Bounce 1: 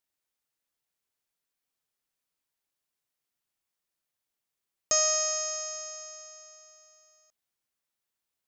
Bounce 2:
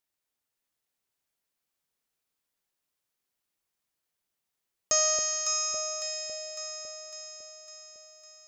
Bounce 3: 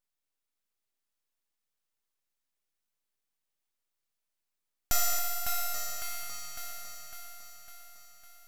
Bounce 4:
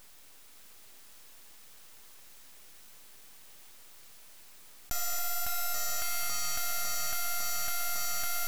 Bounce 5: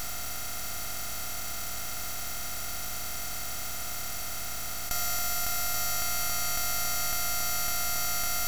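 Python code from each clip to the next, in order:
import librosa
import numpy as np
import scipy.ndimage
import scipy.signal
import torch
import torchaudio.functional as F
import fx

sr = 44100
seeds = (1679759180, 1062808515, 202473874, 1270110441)

y1 = fx.echo_alternate(x, sr, ms=277, hz=870.0, feedback_pct=76, wet_db=-2.5)
y2 = np.abs(y1)
y3 = fx.env_flatten(y2, sr, amount_pct=100)
y3 = y3 * 10.0 ** (-7.5 / 20.0)
y4 = fx.bin_compress(y3, sr, power=0.2)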